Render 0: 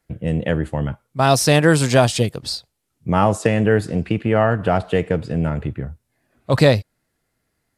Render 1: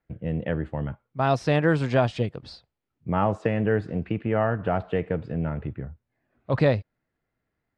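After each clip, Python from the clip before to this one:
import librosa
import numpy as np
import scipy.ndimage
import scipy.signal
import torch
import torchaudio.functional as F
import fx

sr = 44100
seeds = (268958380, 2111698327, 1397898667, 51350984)

y = scipy.signal.sosfilt(scipy.signal.butter(2, 2500.0, 'lowpass', fs=sr, output='sos'), x)
y = y * librosa.db_to_amplitude(-7.0)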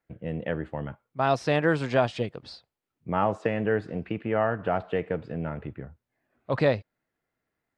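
y = fx.low_shelf(x, sr, hz=170.0, db=-10.0)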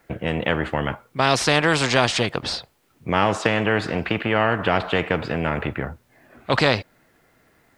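y = fx.spectral_comp(x, sr, ratio=2.0)
y = y * librosa.db_to_amplitude(7.5)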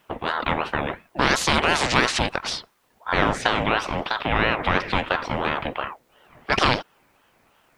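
y = fx.ring_lfo(x, sr, carrier_hz=790.0, swing_pct=55, hz=2.9)
y = y * librosa.db_to_amplitude(1.5)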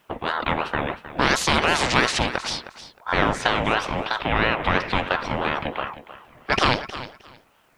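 y = fx.echo_feedback(x, sr, ms=312, feedback_pct=19, wet_db=-14)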